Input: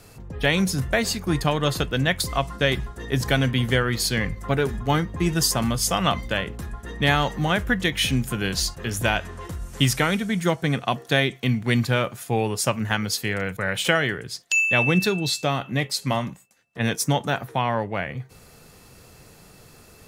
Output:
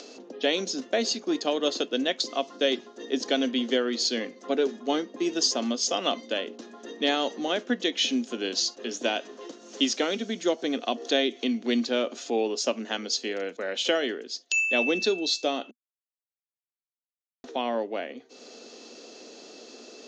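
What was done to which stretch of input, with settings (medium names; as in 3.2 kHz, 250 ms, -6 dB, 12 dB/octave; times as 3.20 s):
10.11–12.92 s: upward compressor, threshold -22 dBFS
15.71–17.44 s: mute
whole clip: Chebyshev band-pass 240–6600 Hz, order 5; high-order bell 1.4 kHz -10 dB; upward compressor, threshold -37 dBFS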